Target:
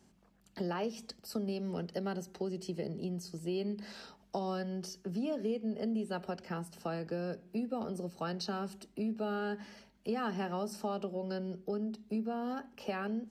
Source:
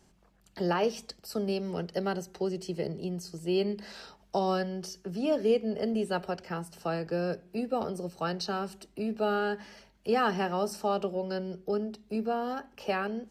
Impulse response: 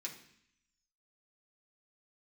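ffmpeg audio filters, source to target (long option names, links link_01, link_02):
-af "highpass=50,equalizer=frequency=230:width_type=o:width=0.57:gain=7.5,acompressor=threshold=-30dB:ratio=3,volume=-3.5dB"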